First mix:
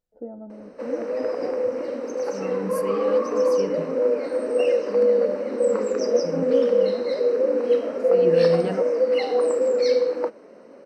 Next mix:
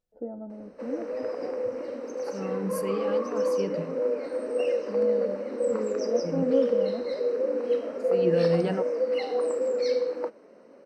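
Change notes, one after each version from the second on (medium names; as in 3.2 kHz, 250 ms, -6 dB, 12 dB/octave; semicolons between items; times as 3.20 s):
background -6.0 dB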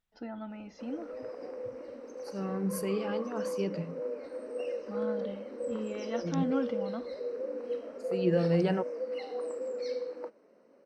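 first voice: remove resonant low-pass 510 Hz, resonance Q 5; background -9.5 dB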